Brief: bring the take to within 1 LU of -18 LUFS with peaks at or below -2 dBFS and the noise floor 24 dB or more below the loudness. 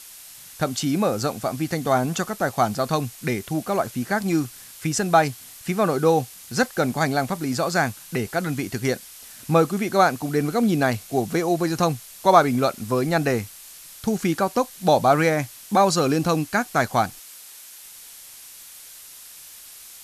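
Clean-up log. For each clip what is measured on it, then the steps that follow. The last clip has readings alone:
noise floor -44 dBFS; noise floor target -47 dBFS; loudness -22.5 LUFS; peak -2.0 dBFS; loudness target -18.0 LUFS
-> denoiser 6 dB, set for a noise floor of -44 dBFS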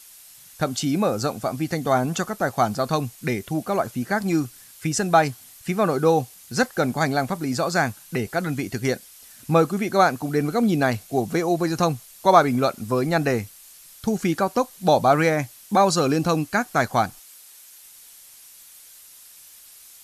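noise floor -48 dBFS; loudness -22.5 LUFS; peak -2.0 dBFS; loudness target -18.0 LUFS
-> gain +4.5 dB; limiter -2 dBFS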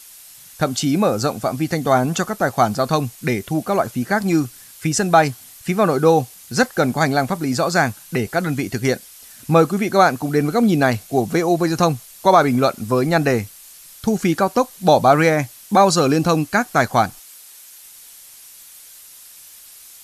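loudness -18.5 LUFS; peak -2.0 dBFS; noise floor -43 dBFS

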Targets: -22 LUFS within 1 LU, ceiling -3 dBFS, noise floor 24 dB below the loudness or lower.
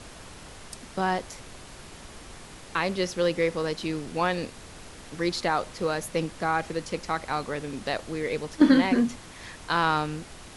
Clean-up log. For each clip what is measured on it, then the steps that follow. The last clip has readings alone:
noise floor -46 dBFS; noise floor target -51 dBFS; loudness -27.0 LUFS; peak -7.0 dBFS; loudness target -22.0 LUFS
-> noise print and reduce 6 dB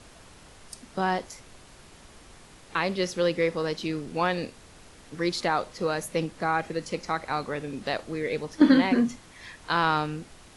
noise floor -52 dBFS; loudness -27.0 LUFS; peak -7.0 dBFS; loudness target -22.0 LUFS
-> gain +5 dB; limiter -3 dBFS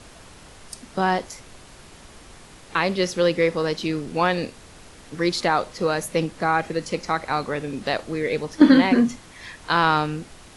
loudness -22.5 LUFS; peak -3.0 dBFS; noise floor -47 dBFS

